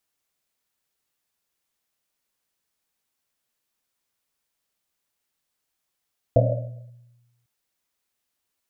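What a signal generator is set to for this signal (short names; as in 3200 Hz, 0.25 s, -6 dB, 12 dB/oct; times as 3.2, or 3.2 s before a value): Risset drum, pitch 120 Hz, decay 1.22 s, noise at 580 Hz, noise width 150 Hz, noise 50%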